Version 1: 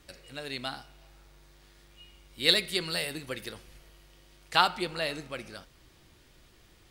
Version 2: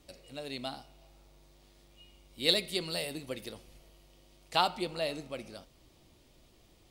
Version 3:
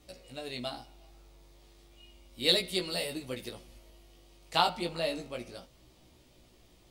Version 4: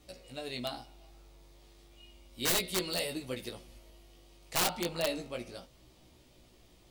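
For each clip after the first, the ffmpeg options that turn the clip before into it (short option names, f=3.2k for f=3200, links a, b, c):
-af "equalizer=f=250:t=o:w=0.67:g=4,equalizer=f=630:t=o:w=0.67:g=5,equalizer=f=1.6k:t=o:w=0.67:g=-9,volume=-3.5dB"
-af "flanger=delay=16:depth=2:speed=0.33,volume=4.5dB"
-af "aeval=exprs='(mod(12.6*val(0)+1,2)-1)/12.6':c=same"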